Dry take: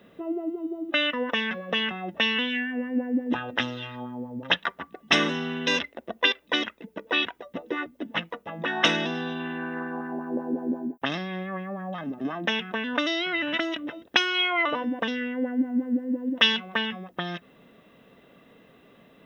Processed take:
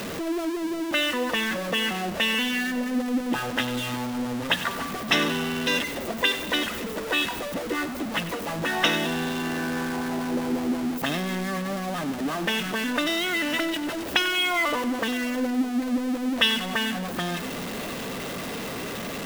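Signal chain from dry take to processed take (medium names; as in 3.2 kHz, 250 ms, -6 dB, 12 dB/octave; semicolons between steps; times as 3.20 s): jump at every zero crossing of -25 dBFS; two-band feedback delay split 840 Hz, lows 615 ms, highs 95 ms, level -14 dB; trim -2.5 dB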